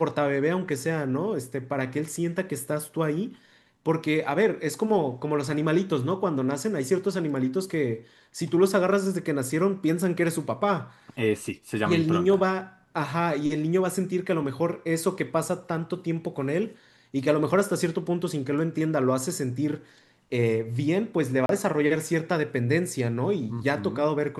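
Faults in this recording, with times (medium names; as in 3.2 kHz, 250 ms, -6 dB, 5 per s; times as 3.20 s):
21.46–21.49 s: dropout 32 ms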